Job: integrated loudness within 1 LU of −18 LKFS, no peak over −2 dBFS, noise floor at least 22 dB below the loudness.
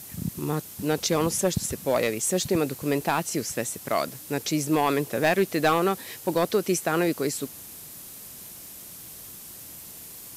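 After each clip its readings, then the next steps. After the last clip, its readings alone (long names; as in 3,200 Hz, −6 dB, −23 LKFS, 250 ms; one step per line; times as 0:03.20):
share of clipped samples 0.4%; peaks flattened at −14.0 dBFS; background noise floor −43 dBFS; target noise floor −48 dBFS; integrated loudness −26.0 LKFS; sample peak −14.0 dBFS; target loudness −18.0 LKFS
→ clipped peaks rebuilt −14 dBFS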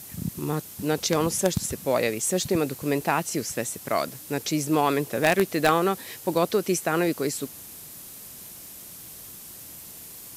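share of clipped samples 0.0%; background noise floor −43 dBFS; target noise floor −48 dBFS
→ broadband denoise 6 dB, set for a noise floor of −43 dBFS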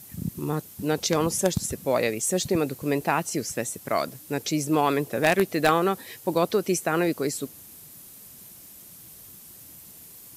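background noise floor −47 dBFS; target noise floor −48 dBFS
→ broadband denoise 6 dB, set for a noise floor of −47 dBFS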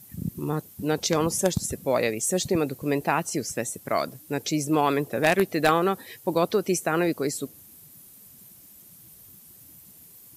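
background noise floor −51 dBFS; integrated loudness −25.5 LKFS; sample peak −5.0 dBFS; target loudness −18.0 LKFS
→ level +7.5 dB
brickwall limiter −2 dBFS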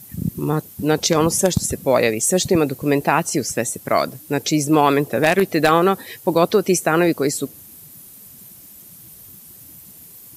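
integrated loudness −18.5 LKFS; sample peak −2.0 dBFS; background noise floor −43 dBFS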